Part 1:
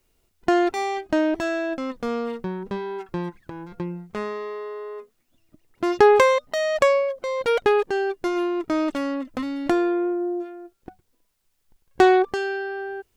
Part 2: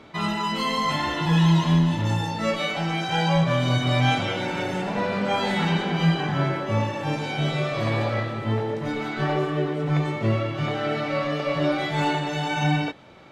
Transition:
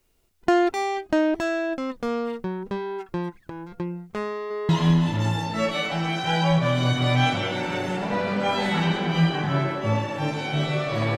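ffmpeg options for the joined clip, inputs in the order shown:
-filter_complex "[0:a]apad=whole_dur=11.17,atrim=end=11.17,atrim=end=4.692[a];[1:a]atrim=start=1.538:end=8.02[b];[a][b]acrossfade=d=0.004:c1=hsin:c2=hsin,asplit=2[c][d];[d]afade=t=in:st=4.29:d=0.01,afade=t=out:st=4.69:d=0.01,aecho=0:1:210|420|630|840:0.473151|0.165603|0.057961|0.0202864[e];[c][e]amix=inputs=2:normalize=0"

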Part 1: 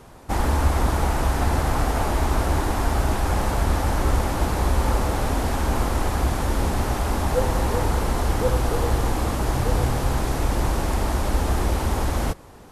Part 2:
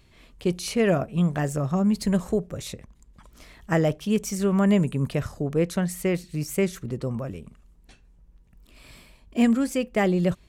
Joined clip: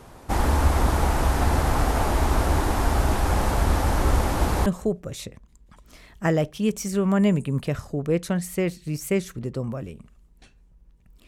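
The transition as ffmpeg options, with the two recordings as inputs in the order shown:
-filter_complex "[0:a]apad=whole_dur=11.27,atrim=end=11.27,atrim=end=4.662[a];[1:a]atrim=start=2.128:end=8.74[b];[a][b]acrossfade=d=0.004:c1=hsin:c2=hsin"

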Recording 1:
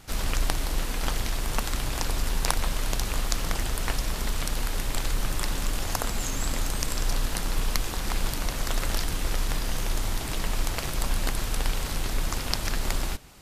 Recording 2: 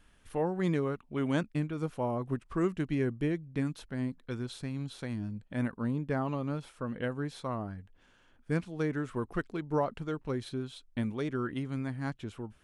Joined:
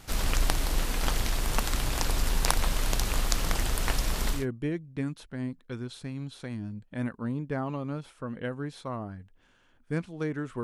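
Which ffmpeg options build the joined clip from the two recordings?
-filter_complex "[0:a]apad=whole_dur=10.63,atrim=end=10.63,atrim=end=4.46,asetpts=PTS-STARTPTS[a];[1:a]atrim=start=2.89:end=9.22,asetpts=PTS-STARTPTS[b];[a][b]acrossfade=d=0.16:c1=tri:c2=tri"

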